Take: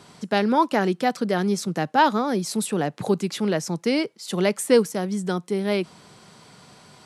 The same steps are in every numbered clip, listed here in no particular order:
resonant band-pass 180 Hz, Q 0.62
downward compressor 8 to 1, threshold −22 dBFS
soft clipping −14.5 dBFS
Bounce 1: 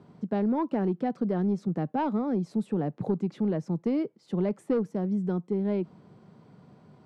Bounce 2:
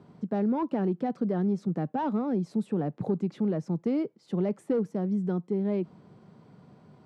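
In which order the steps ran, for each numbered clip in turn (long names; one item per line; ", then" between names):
resonant band-pass, then soft clipping, then downward compressor
soft clipping, then resonant band-pass, then downward compressor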